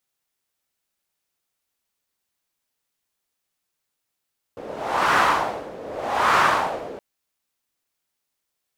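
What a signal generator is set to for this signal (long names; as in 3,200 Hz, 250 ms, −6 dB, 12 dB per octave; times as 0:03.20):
wind from filtered noise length 2.42 s, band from 470 Hz, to 1,200 Hz, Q 2.5, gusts 2, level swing 19.5 dB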